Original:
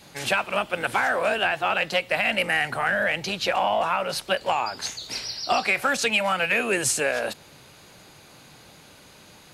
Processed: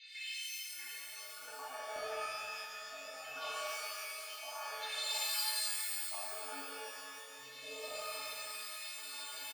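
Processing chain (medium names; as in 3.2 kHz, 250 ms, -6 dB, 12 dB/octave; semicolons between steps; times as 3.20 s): low-pass that closes with the level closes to 570 Hz, closed at -21 dBFS; spectral gate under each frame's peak -20 dB strong; low-pass 4.3 kHz 24 dB/octave; peaking EQ 1.1 kHz -12 dB 1.3 oct; compression 6:1, threshold -44 dBFS, peak gain reduction 17.5 dB; LFO high-pass square 0.66 Hz 980–2000 Hz; inharmonic resonator 130 Hz, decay 0.64 s, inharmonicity 0.03; three bands offset in time highs, lows, mids 510/640 ms, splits 190/2000 Hz; crackling interface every 0.74 s, samples 1024, repeat, from 0.46 s; pitch-shifted reverb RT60 2.4 s, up +12 st, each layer -2 dB, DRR -6.5 dB; trim +15 dB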